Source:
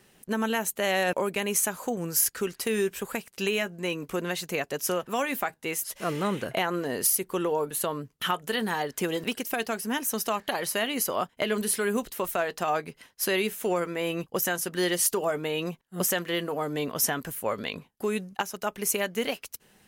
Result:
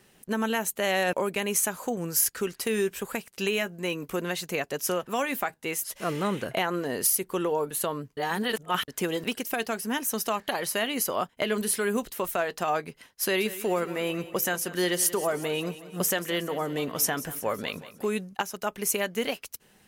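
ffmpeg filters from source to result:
-filter_complex "[0:a]asettb=1/sr,asplit=3[a][b][c];[a]atrim=end=3.574[d];[b]atrim=start=3.57:end=4.3,asetpts=PTS-STARTPTS,afade=t=in:d=0.004:c=qsin,afade=t=out:st=0.726:d=0.004:c=qsin,equalizer=f=14k:w=1.5:g=5.5[e];[c]atrim=start=4.296[f];[d][e]acrossfade=d=0.004:c1=hsin:c2=qsin[g];[g][f]acrossfade=d=0.004:c1=qsin:c2=hsin,asettb=1/sr,asplit=3[h][i][j];[h]atrim=end=13.224[k];[i]atrim=start=13.22:end=18.07,asetpts=PTS-STARTPTS,afade=t=in:d=0.004:c=qsin,afade=t=out:st=4.846:d=0.004:c=qsin,aecho=1:1:183|366|549|732|915:0.168|0.0907|0.049|0.0264|0.0143,atrim=end_sample=213885[l];[j]atrim=start=18.066[m];[k][l]acrossfade=d=0.004:c1=hsin:c2=qsin[n];[n][m]acrossfade=d=0.004:c1=qsin:c2=hsin,asplit=3[o][p][q];[o]atrim=end=8.172[r];[p]atrim=start=8.168:end=8.882,asetpts=PTS-STARTPTS,areverse[s];[q]atrim=start=8.878[t];[r][s]acrossfade=d=0.004:c1=hsin:c2=hsin[u];[u][t]acrossfade=d=0.004:c1=hsin:c2=hsin"

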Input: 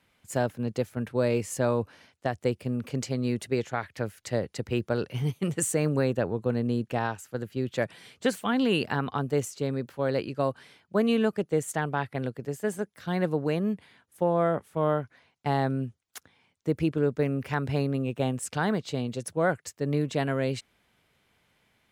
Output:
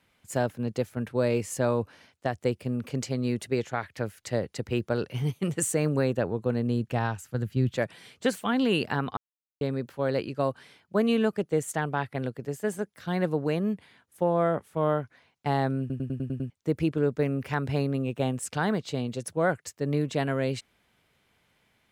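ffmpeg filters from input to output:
-filter_complex "[0:a]asettb=1/sr,asplit=3[a][b][c];[a]atrim=end=6.574[d];[b]atrim=start=6.57:end=7.77,asetpts=PTS-STARTPTS,afade=t=in:d=0.004:c=qsin,afade=t=out:st=1.196:d=0.004:c=qsin,asubboost=boost=9.5:cutoff=210[e];[c]atrim=start=7.766[f];[d][e]acrossfade=d=0.004:c1=hsin:c2=qsin[g];[g][f]acrossfade=d=0.004:c1=qsin:c2=hsin,asplit=10[h][i][j][k][l][m][n][o][p][q];[h]atrim=end=9.17,asetpts=PTS-STARTPTS,afade=t=out:st=9.166:d=0.004:c=hsin[r];[i]atrim=start=9.17:end=9.61,asetpts=PTS-STARTPTS,volume=0[s];[j]atrim=start=9.61:end=15.902,asetpts=PTS-STARTPTS,afade=t=in:d=0.004:c=hsin[t];[k]atrim=start=15.798:end=15.902[u];[l]atrim=start=15.798:end=15.902[v];[m]atrim=start=15.798:end=15.902[w];[n]atrim=start=15.798:end=15.902[x];[o]atrim=start=15.798:end=15.902[y];[p]atrim=start=15.798:end=15.902[z];[q]atrim=start=16.498[aa];[r][s][t]concat=n=3:v=0:a=1[ab];[ab][u]acrossfade=d=0.004:c1=hsin:c2=hsin[ac];[ac][v]acrossfade=d=0.004:c1=hsin:c2=hsin[ad];[ad][w]acrossfade=d=0.004:c1=hsin:c2=hsin[ae];[ae][x]acrossfade=d=0.004:c1=hsin:c2=hsin[af];[af][y]acrossfade=d=0.004:c1=hsin:c2=hsin[ag];[ag][z]acrossfade=d=0.004:c1=hsin:c2=hsin[ah];[ah][aa]acrossfade=d=0.004:c1=hsin:c2=hsin"

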